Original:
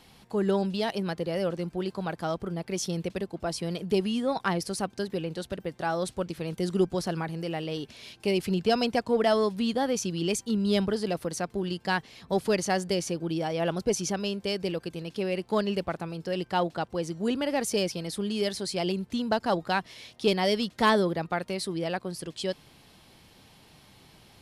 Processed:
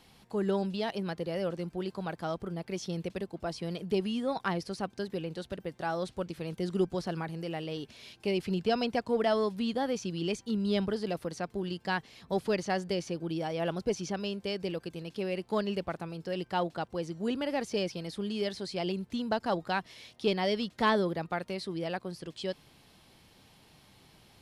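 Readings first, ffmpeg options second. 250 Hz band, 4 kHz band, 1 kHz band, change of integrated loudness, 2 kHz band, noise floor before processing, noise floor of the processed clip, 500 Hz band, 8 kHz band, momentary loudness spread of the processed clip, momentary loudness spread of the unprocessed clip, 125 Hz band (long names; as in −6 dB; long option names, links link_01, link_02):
−4.0 dB, −5.0 dB, −4.0 dB, −4.0 dB, −4.0 dB, −58 dBFS, −62 dBFS, −4.0 dB, −11.5 dB, 8 LU, 8 LU, −4.0 dB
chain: -filter_complex "[0:a]acrossover=split=5300[link_01][link_02];[link_02]acompressor=threshold=-51dB:ratio=4:attack=1:release=60[link_03];[link_01][link_03]amix=inputs=2:normalize=0,volume=-4dB"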